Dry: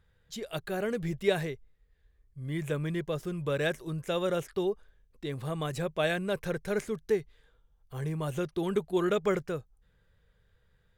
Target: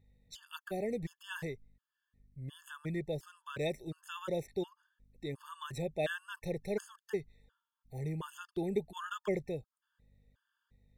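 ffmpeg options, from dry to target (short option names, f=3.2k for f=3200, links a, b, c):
-af "aeval=exprs='val(0)+0.000794*(sin(2*PI*50*n/s)+sin(2*PI*2*50*n/s)/2+sin(2*PI*3*50*n/s)/3+sin(2*PI*4*50*n/s)/4+sin(2*PI*5*50*n/s)/5)':c=same,afftfilt=real='re*gt(sin(2*PI*1.4*pts/sr)*(1-2*mod(floor(b*sr/1024/890),2)),0)':imag='im*gt(sin(2*PI*1.4*pts/sr)*(1-2*mod(floor(b*sr/1024/890),2)),0)':win_size=1024:overlap=0.75,volume=-4dB"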